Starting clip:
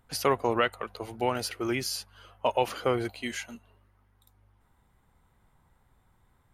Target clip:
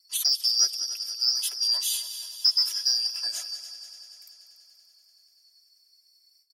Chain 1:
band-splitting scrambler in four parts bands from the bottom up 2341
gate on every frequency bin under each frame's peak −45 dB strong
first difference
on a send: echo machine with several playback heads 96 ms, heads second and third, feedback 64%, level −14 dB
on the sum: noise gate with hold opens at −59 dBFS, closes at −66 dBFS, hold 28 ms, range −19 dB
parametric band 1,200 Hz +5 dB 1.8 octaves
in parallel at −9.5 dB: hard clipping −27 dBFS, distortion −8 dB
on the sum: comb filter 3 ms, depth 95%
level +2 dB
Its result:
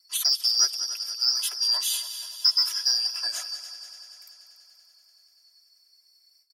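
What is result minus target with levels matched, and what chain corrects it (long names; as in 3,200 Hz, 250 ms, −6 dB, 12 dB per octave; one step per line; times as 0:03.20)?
1,000 Hz band +7.0 dB
band-splitting scrambler in four parts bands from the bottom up 2341
gate on every frequency bin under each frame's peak −45 dB strong
first difference
on a send: echo machine with several playback heads 96 ms, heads second and third, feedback 64%, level −14 dB
on the sum: noise gate with hold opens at −59 dBFS, closes at −66 dBFS, hold 28 ms, range −19 dB
parametric band 1,200 Hz −3.5 dB 1.8 octaves
in parallel at −9.5 dB: hard clipping −27 dBFS, distortion −9 dB
on the sum: comb filter 3 ms, depth 95%
level +2 dB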